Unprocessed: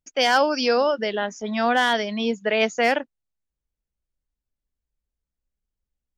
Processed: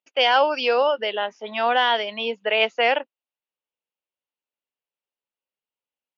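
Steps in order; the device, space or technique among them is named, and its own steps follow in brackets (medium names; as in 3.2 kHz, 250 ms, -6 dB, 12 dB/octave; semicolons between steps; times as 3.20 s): phone earpiece (cabinet simulation 450–3900 Hz, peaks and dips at 520 Hz +3 dB, 910 Hz +4 dB, 1.7 kHz -3 dB, 2.8 kHz +8 dB)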